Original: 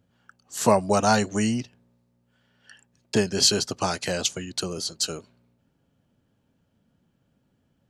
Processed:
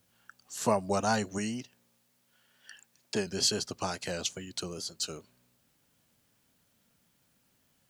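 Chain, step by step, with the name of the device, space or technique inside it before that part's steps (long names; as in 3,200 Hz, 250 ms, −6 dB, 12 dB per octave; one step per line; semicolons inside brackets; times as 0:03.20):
noise-reduction cassette on a plain deck (one half of a high-frequency compander encoder only; tape wow and flutter; white noise bed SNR 37 dB)
0:01.38–0:03.27: low-shelf EQ 120 Hz −11 dB
level −8 dB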